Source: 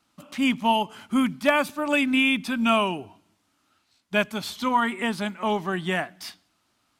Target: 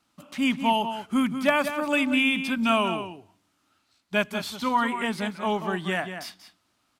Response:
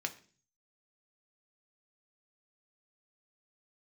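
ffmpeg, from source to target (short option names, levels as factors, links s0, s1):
-filter_complex "[0:a]asplit=2[s0][s1];[s1]adelay=186.6,volume=0.355,highshelf=f=4000:g=-4.2[s2];[s0][s2]amix=inputs=2:normalize=0,volume=0.841"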